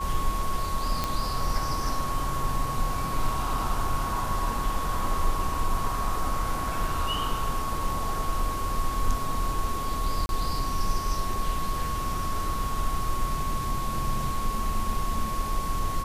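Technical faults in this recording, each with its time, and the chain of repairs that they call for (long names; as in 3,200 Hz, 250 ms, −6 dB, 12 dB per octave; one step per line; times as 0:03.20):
whistle 1,100 Hz −31 dBFS
0:01.04: click −11 dBFS
0:10.26–0:10.29: drop-out 31 ms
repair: click removal
notch filter 1,100 Hz, Q 30
repair the gap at 0:10.26, 31 ms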